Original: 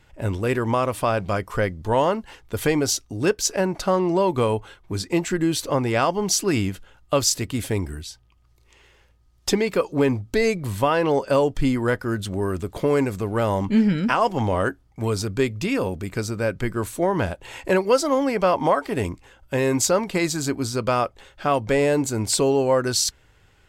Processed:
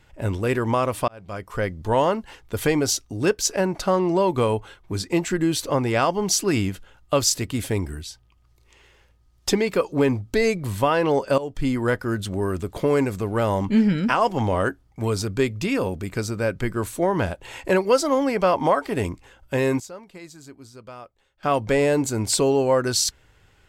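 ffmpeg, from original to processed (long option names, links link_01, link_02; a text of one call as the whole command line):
ffmpeg -i in.wav -filter_complex "[0:a]asplit=5[link_01][link_02][link_03][link_04][link_05];[link_01]atrim=end=1.08,asetpts=PTS-STARTPTS,afade=type=out:start_time=1.076:duration=0.004:curve=hsin[link_06];[link_02]atrim=start=1.08:end=11.38,asetpts=PTS-STARTPTS,afade=type=in:duration=0.72,afade=type=out:start_time=10.296:duration=0.004:curve=hsin:silence=0.158489[link_07];[link_03]atrim=start=11.38:end=19.8,asetpts=PTS-STARTPTS,afade=type=in:duration=0.57:curve=qsin:silence=0.158489,afade=type=out:start_time=8.24:duration=0.18:curve=log:silence=0.112202[link_08];[link_04]atrim=start=19.8:end=21.43,asetpts=PTS-STARTPTS,volume=-19dB[link_09];[link_05]atrim=start=21.43,asetpts=PTS-STARTPTS,afade=type=in:duration=0.18:curve=log:silence=0.112202[link_10];[link_06][link_07][link_08][link_09][link_10]concat=n=5:v=0:a=1" out.wav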